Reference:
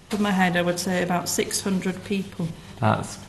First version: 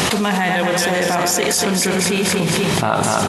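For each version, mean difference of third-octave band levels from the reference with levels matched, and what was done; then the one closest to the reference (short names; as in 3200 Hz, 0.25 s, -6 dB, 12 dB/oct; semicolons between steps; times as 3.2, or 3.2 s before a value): 8.5 dB: regenerating reverse delay 0.241 s, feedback 48%, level -6.5 dB; HPF 340 Hz 6 dB/oct; echo 0.239 s -9 dB; fast leveller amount 100%; gain +1 dB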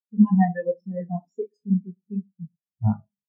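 22.5 dB: LPF 9400 Hz; dynamic EQ 1000 Hz, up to +5 dB, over -42 dBFS, Q 5.6; Schroeder reverb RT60 0.46 s, combs from 26 ms, DRR 4.5 dB; spectral expander 4:1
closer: first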